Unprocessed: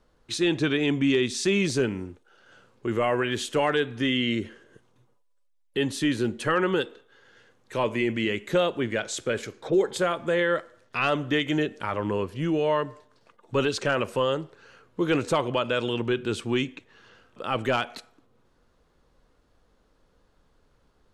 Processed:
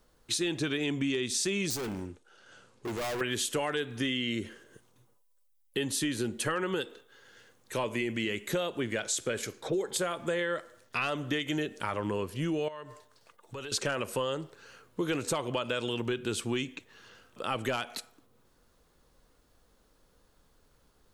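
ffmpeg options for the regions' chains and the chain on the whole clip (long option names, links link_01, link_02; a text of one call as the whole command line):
ffmpeg -i in.wav -filter_complex "[0:a]asettb=1/sr,asplit=3[link_01][link_02][link_03];[link_01]atrim=end=1.704[link_04];[link_02]atrim=start=1.7:end=3.21,asetpts=PTS-STARTPTS,afade=type=in:duration=0.004:curve=qsin,afade=type=out:start_time=1.506:duration=0.004:curve=qsin,lowpass=frequency=9500:width=0.5412,lowpass=frequency=9500:width=1.3066,asoftclip=type=hard:threshold=-30.5dB[link_05];[link_03]atrim=start=3.206[link_06];[link_04][link_05]acrossfade=duration=0.004:curve1=hsin:curve2=qsin[link_07];[link_07][link_06]acrossfade=duration=0.004:curve1=qsin:curve2=hsin,asettb=1/sr,asplit=3[link_08][link_09][link_10];[link_08]atrim=end=12.684[link_11];[link_09]atrim=start=12.68:end=13.72,asetpts=PTS-STARTPTS,afade=type=in:duration=0.004:curve=qsin,afade=type=out:start_time=1.036:duration=0.004:curve=qsin,equalizer=frequency=230:width=0.97:gain=-6,acompressor=threshold=-38dB:ratio=4:attack=3.2:release=140:knee=1:detection=peak[link_12];[link_10]atrim=start=13.716[link_13];[link_11][link_12]acrossfade=duration=0.004:curve1=hsin:curve2=qsin[link_14];[link_14][link_13]acrossfade=duration=0.004:curve1=qsin:curve2=hsin,aemphasis=mode=production:type=50fm,acompressor=threshold=-26dB:ratio=6,volume=-1.5dB" out.wav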